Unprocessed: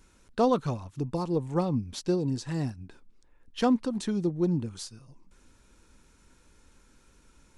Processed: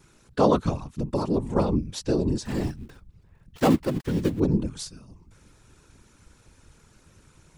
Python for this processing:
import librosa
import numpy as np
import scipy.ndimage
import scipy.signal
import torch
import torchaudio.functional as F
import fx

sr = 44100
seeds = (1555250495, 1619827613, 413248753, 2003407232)

y = fx.dead_time(x, sr, dead_ms=0.2, at=(2.45, 4.4))
y = fx.whisperise(y, sr, seeds[0])
y = y * 10.0 ** (4.0 / 20.0)